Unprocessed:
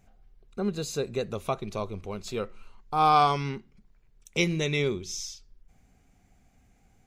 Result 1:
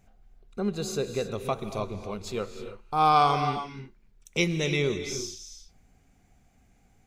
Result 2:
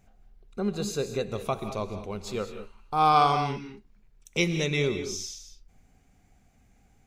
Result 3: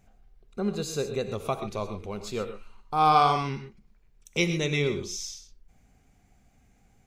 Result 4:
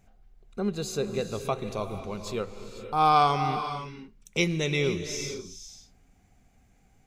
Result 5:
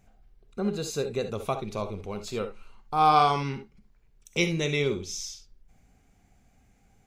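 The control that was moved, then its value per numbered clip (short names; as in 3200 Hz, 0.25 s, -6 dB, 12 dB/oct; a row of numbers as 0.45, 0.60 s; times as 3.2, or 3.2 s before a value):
non-linear reverb, gate: 340, 230, 150, 540, 90 ms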